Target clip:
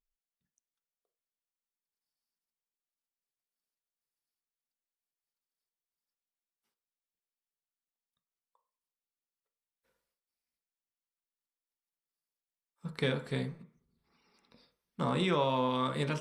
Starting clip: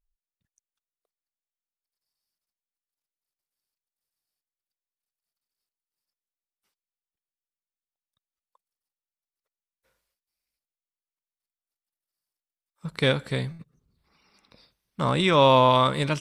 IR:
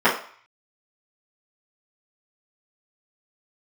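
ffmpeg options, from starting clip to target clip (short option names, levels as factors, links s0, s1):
-filter_complex "[0:a]acompressor=threshold=0.1:ratio=6,asplit=2[s0][s1];[1:a]atrim=start_sample=2205,lowshelf=f=410:g=12[s2];[s1][s2]afir=irnorm=-1:irlink=0,volume=0.0398[s3];[s0][s3]amix=inputs=2:normalize=0,volume=0.376"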